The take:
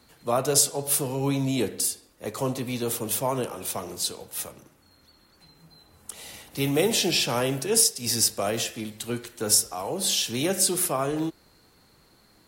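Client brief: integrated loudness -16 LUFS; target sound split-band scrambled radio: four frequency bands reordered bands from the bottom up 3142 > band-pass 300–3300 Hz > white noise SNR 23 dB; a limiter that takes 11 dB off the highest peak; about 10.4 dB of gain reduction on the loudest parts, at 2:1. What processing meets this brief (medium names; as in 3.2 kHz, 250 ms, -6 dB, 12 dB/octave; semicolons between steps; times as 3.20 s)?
compression 2:1, threshold -35 dBFS; peak limiter -28 dBFS; four frequency bands reordered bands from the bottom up 3142; band-pass 300–3300 Hz; white noise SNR 23 dB; trim +21.5 dB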